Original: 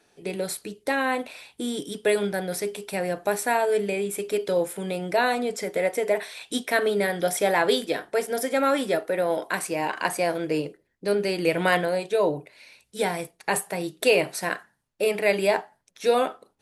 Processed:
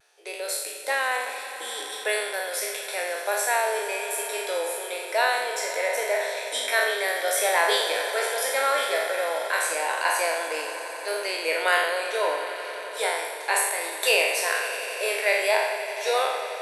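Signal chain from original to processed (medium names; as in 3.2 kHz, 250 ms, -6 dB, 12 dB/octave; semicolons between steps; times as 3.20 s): spectral sustain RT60 1.02 s; Bessel high-pass 730 Hz, order 8; vibrato 0.58 Hz 21 cents; echo with a slow build-up 89 ms, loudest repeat 5, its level -17.5 dB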